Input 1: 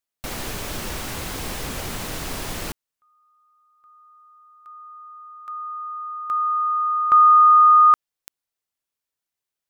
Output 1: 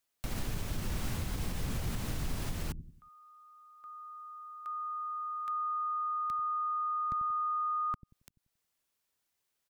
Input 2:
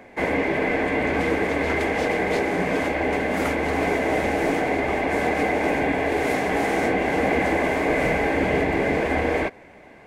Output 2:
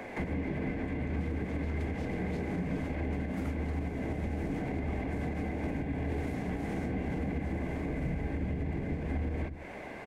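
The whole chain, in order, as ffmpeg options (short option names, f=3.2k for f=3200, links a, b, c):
-filter_complex "[0:a]acrossover=split=210[a][b];[a]aecho=1:1:91|182|273|364:0.376|0.12|0.0385|0.0123[c];[b]acompressor=threshold=-36dB:ratio=16:attack=0.32:release=240:knee=6:detection=peak[d];[c][d]amix=inputs=2:normalize=0,alimiter=level_in=5.5dB:limit=-24dB:level=0:latency=1:release=333,volume=-5.5dB,volume=4.5dB"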